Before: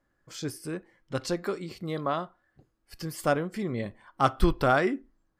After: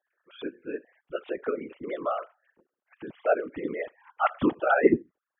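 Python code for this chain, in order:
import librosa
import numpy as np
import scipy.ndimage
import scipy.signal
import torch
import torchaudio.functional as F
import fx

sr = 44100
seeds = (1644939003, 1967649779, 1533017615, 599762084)

y = fx.sine_speech(x, sr)
y = fx.whisperise(y, sr, seeds[0])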